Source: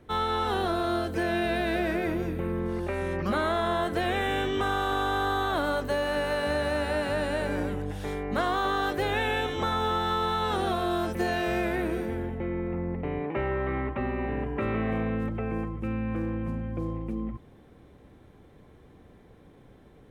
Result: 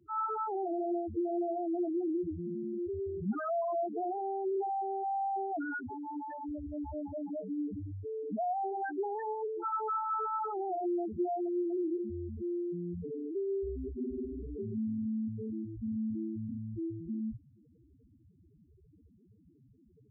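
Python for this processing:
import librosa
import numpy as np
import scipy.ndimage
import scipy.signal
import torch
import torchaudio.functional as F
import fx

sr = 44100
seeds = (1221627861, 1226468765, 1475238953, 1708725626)

y = fx.notch_comb(x, sr, f0_hz=570.0)
y = fx.spec_topn(y, sr, count=2)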